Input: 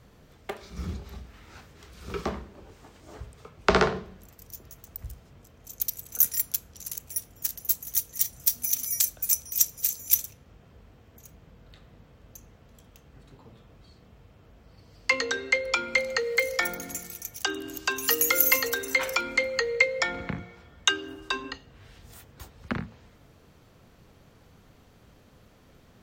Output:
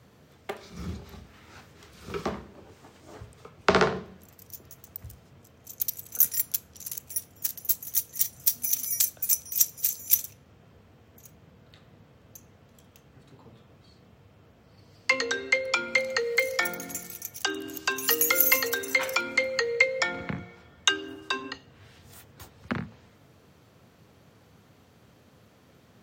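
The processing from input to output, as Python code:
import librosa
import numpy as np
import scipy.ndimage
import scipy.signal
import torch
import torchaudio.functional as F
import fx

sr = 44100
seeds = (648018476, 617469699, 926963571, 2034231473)

y = scipy.signal.sosfilt(scipy.signal.butter(4, 80.0, 'highpass', fs=sr, output='sos'), x)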